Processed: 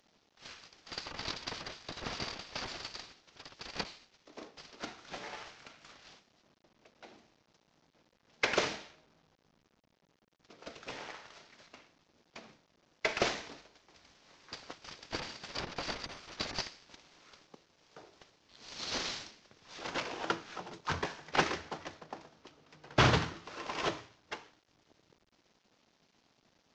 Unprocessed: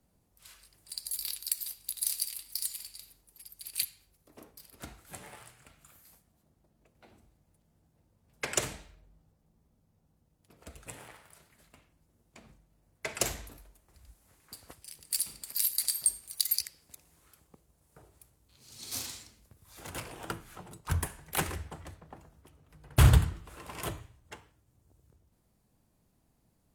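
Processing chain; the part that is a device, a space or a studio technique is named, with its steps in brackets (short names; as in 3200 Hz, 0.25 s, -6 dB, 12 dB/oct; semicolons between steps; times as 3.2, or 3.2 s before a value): early wireless headset (HPF 270 Hz 12 dB/oct; CVSD 32 kbps); gain +6 dB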